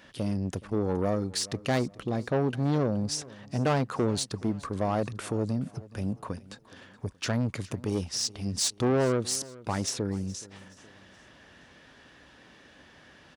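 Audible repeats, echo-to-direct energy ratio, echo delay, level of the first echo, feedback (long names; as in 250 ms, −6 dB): 2, −19.5 dB, 422 ms, −20.5 dB, 41%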